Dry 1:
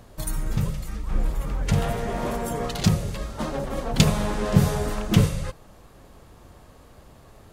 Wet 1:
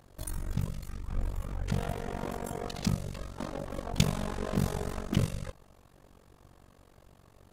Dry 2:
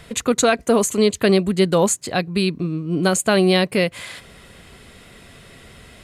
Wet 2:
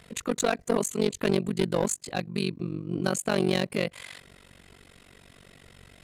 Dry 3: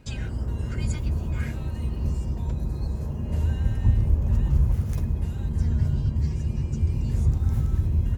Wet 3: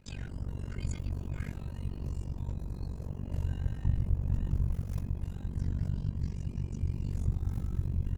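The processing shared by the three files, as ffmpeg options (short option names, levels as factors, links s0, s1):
-af "aeval=exprs='clip(val(0),-1,0.224)':c=same,tremolo=f=47:d=0.974,volume=0.562"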